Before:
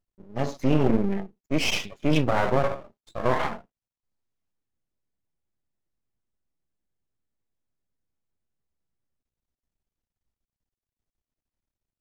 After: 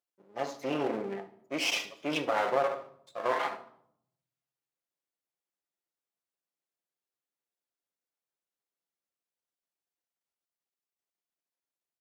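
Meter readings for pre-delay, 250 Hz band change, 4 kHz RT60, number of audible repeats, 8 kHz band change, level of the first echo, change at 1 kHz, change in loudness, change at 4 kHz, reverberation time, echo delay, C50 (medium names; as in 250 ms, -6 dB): 6 ms, -12.0 dB, 0.50 s, 1, -3.5 dB, -19.0 dB, -3.5 dB, -6.5 dB, -3.5 dB, 0.70 s, 73 ms, 13.5 dB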